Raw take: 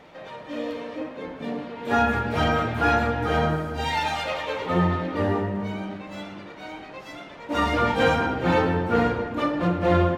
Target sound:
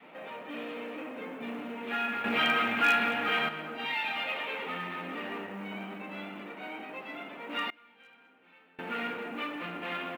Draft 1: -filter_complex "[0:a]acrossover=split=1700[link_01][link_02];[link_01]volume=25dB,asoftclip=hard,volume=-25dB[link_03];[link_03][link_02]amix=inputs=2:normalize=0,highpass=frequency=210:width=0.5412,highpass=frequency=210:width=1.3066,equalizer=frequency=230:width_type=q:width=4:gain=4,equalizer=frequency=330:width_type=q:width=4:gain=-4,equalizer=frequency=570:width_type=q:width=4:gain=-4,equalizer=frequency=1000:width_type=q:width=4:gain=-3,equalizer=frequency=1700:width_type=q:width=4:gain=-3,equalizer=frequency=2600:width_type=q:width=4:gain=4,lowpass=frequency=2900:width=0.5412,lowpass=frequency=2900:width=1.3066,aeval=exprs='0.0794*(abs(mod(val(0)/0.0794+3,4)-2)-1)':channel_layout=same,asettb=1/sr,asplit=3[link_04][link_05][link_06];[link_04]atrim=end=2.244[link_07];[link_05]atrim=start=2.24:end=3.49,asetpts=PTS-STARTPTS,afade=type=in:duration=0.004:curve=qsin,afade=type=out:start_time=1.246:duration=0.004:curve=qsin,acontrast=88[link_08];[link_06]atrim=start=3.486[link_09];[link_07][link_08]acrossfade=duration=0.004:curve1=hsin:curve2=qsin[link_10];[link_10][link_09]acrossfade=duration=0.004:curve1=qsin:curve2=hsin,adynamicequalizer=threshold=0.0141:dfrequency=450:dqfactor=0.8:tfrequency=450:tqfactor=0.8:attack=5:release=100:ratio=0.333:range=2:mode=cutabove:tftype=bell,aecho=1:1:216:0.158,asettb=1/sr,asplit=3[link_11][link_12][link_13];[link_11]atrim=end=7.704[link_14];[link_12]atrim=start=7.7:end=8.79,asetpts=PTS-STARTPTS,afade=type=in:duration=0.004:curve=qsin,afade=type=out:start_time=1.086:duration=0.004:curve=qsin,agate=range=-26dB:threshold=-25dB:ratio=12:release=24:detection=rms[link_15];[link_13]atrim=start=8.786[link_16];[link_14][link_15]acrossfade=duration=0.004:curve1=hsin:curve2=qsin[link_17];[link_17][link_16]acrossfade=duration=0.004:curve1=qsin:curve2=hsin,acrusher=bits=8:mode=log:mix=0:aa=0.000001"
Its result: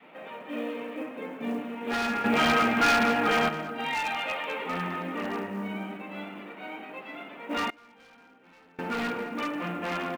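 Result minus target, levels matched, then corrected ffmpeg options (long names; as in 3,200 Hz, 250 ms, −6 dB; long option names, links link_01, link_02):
gain into a clipping stage and back: distortion −5 dB
-filter_complex "[0:a]acrossover=split=1700[link_01][link_02];[link_01]volume=36.5dB,asoftclip=hard,volume=-36.5dB[link_03];[link_03][link_02]amix=inputs=2:normalize=0,highpass=frequency=210:width=0.5412,highpass=frequency=210:width=1.3066,equalizer=frequency=230:width_type=q:width=4:gain=4,equalizer=frequency=330:width_type=q:width=4:gain=-4,equalizer=frequency=570:width_type=q:width=4:gain=-4,equalizer=frequency=1000:width_type=q:width=4:gain=-3,equalizer=frequency=1700:width_type=q:width=4:gain=-3,equalizer=frequency=2600:width_type=q:width=4:gain=4,lowpass=frequency=2900:width=0.5412,lowpass=frequency=2900:width=1.3066,aeval=exprs='0.0794*(abs(mod(val(0)/0.0794+3,4)-2)-1)':channel_layout=same,asettb=1/sr,asplit=3[link_04][link_05][link_06];[link_04]atrim=end=2.244[link_07];[link_05]atrim=start=2.24:end=3.49,asetpts=PTS-STARTPTS,afade=type=in:duration=0.004:curve=qsin,afade=type=out:start_time=1.246:duration=0.004:curve=qsin,acontrast=88[link_08];[link_06]atrim=start=3.486[link_09];[link_07][link_08]acrossfade=duration=0.004:curve1=hsin:curve2=qsin[link_10];[link_10][link_09]acrossfade=duration=0.004:curve1=qsin:curve2=hsin,adynamicequalizer=threshold=0.0141:dfrequency=450:dqfactor=0.8:tfrequency=450:tqfactor=0.8:attack=5:release=100:ratio=0.333:range=2:mode=cutabove:tftype=bell,aecho=1:1:216:0.158,asettb=1/sr,asplit=3[link_11][link_12][link_13];[link_11]atrim=end=7.704[link_14];[link_12]atrim=start=7.7:end=8.79,asetpts=PTS-STARTPTS,afade=type=in:duration=0.004:curve=qsin,afade=type=out:start_time=1.086:duration=0.004:curve=qsin,agate=range=-26dB:threshold=-25dB:ratio=12:release=24:detection=rms[link_15];[link_13]atrim=start=8.786[link_16];[link_14][link_15]acrossfade=duration=0.004:curve1=hsin:curve2=qsin[link_17];[link_17][link_16]acrossfade=duration=0.004:curve1=qsin:curve2=hsin,acrusher=bits=8:mode=log:mix=0:aa=0.000001"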